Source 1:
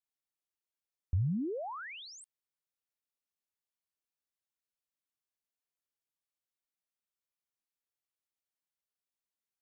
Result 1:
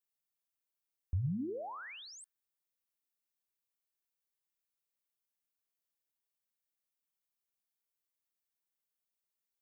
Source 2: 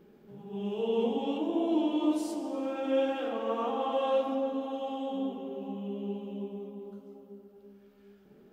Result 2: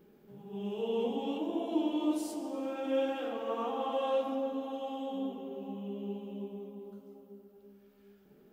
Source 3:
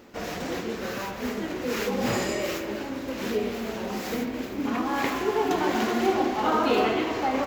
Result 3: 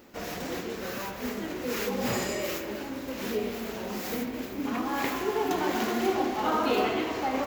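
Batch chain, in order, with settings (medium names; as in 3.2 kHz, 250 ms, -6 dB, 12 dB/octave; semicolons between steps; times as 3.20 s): treble shelf 11 kHz +10.5 dB; de-hum 110.8 Hz, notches 16; trim -3 dB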